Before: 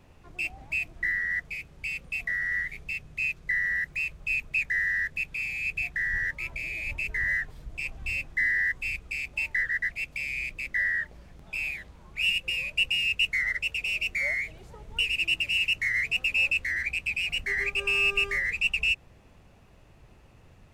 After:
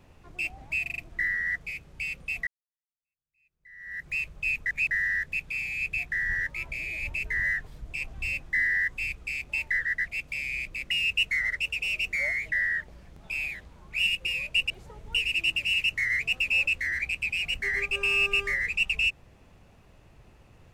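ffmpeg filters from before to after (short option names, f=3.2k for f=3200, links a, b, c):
-filter_complex "[0:a]asplit=11[a][b][c][d][e][f][g][h][i][j][k];[a]atrim=end=0.862[l];[b]atrim=start=0.818:end=0.862[m];[c]atrim=start=0.818:end=0.862[n];[d]atrim=start=0.818:end=0.862[o];[e]atrim=start=0.818:end=2.31,asetpts=PTS-STARTPTS,afade=t=out:st=1.488:d=0.004:c=hsin[p];[f]atrim=start=2.31:end=4.502,asetpts=PTS-STARTPTS,afade=t=in:d=1.62:c=exp[q];[g]atrim=start=4.498:end=4.752,asetpts=PTS-STARTPTS,areverse[r];[h]atrim=start=4.748:end=10.752[s];[i]atrim=start=12.928:end=14.542[t];[j]atrim=start=10.748:end=12.932[u];[k]atrim=start=14.538[v];[l][m]acrossfade=d=0.004:c1=hsin:c2=hsin[w];[w][n]acrossfade=d=0.004:c1=hsin:c2=hsin[x];[x][o]acrossfade=d=0.004:c1=hsin:c2=hsin[y];[p][q]concat=n=2:v=0:a=1[z];[y][z]acrossfade=d=0.004:c1=hsin:c2=hsin[aa];[aa][r]acrossfade=d=0.004:c1=hsin:c2=hsin[ab];[ab][s]acrossfade=d=0.004:c1=hsin:c2=hsin[ac];[ac][t]acrossfade=d=0.004:c1=hsin:c2=hsin[ad];[ad][u]acrossfade=d=0.004:c1=hsin:c2=hsin[ae];[ae][v]acrossfade=d=0.004:c1=hsin:c2=hsin"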